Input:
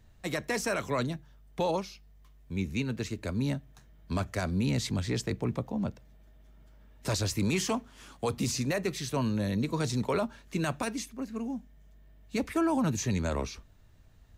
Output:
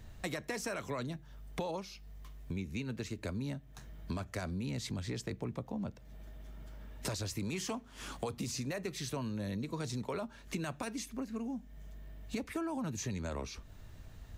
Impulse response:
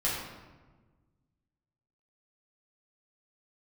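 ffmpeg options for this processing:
-af "acompressor=threshold=-45dB:ratio=5,volume=7.5dB"

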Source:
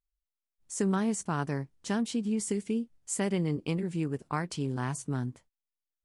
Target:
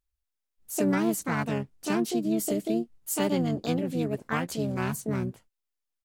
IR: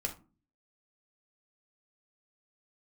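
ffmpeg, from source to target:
-filter_complex "[0:a]asplit=3[a][b][c];[b]asetrate=29433,aresample=44100,atempo=1.49831,volume=-16dB[d];[c]asetrate=66075,aresample=44100,atempo=0.66742,volume=0dB[e];[a][d][e]amix=inputs=3:normalize=0"

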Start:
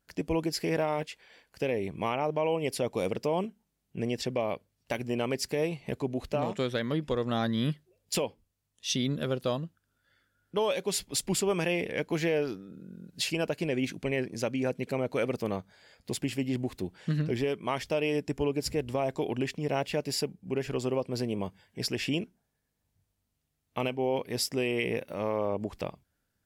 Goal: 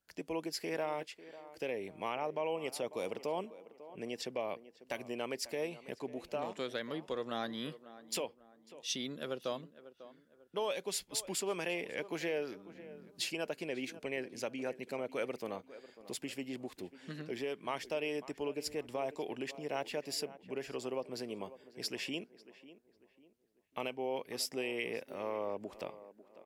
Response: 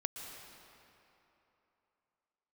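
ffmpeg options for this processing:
-filter_complex "[0:a]lowshelf=f=240:g=-8.5,acrossover=split=190[a][b];[a]acompressor=threshold=-53dB:ratio=6[c];[b]asplit=2[d][e];[e]adelay=546,lowpass=f=1.7k:p=1,volume=-15dB,asplit=2[f][g];[g]adelay=546,lowpass=f=1.7k:p=1,volume=0.4,asplit=2[h][i];[i]adelay=546,lowpass=f=1.7k:p=1,volume=0.4,asplit=2[j][k];[k]adelay=546,lowpass=f=1.7k:p=1,volume=0.4[l];[d][f][h][j][l]amix=inputs=5:normalize=0[m];[c][m]amix=inputs=2:normalize=0,volume=-6dB"

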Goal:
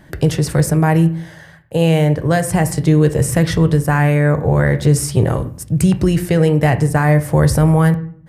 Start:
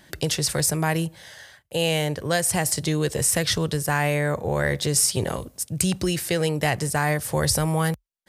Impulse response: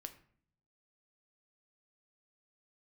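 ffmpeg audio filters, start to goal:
-filter_complex "[0:a]asplit=2[a][b];[1:a]atrim=start_sample=2205,lowpass=2.3k,lowshelf=f=270:g=9.5[c];[b][c]afir=irnorm=-1:irlink=0,volume=10dB[d];[a][d]amix=inputs=2:normalize=0,volume=-2dB"

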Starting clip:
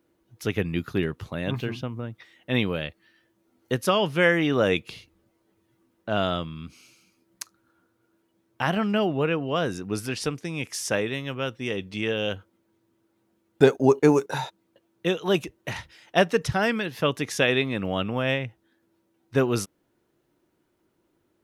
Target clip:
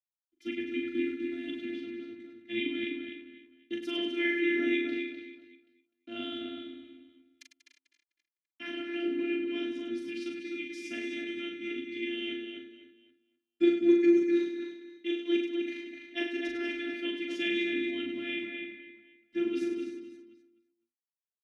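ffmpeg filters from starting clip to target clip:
-filter_complex "[0:a]asettb=1/sr,asplit=3[a][b][c];[a]atrim=end=0.724[d];[b]atrim=start=0.72:end=1.58,asetpts=PTS-STARTPTS,afade=t=in:d=0.004:c=qsin,afade=t=out:st=0.856:d=0.004:c=qsin,acrusher=bits=9:dc=4:mix=0:aa=0.000001[e];[c]atrim=start=1.576[f];[d][e]acrossfade=d=0.004:c1=hsin:c2=qsin[g];[g][f]acrossfade=d=0.004:c1=qsin:c2=hsin,aeval=exprs='sgn(val(0))*max(abs(val(0))-0.00422,0)':c=same,asplit=2[h][i];[i]aecho=0:1:40|100|190|325|527.5:0.631|0.398|0.251|0.158|0.1[j];[h][j]amix=inputs=2:normalize=0,afftfilt=real='hypot(re,im)*cos(PI*b)':imag='0':win_size=512:overlap=0.75,asplit=3[k][l][m];[k]bandpass=f=270:t=q:w=8,volume=0dB[n];[l]bandpass=f=2.29k:t=q:w=8,volume=-6dB[o];[m]bandpass=f=3.01k:t=q:w=8,volume=-9dB[p];[n][o][p]amix=inputs=3:normalize=0,asplit=2[q][r];[r]adelay=253,lowpass=f=3.6k:p=1,volume=-4dB,asplit=2[s][t];[t]adelay=253,lowpass=f=3.6k:p=1,volume=0.24,asplit=2[u][v];[v]adelay=253,lowpass=f=3.6k:p=1,volume=0.24[w];[s][u][w]amix=inputs=3:normalize=0[x];[q][x]amix=inputs=2:normalize=0,volume=7dB"

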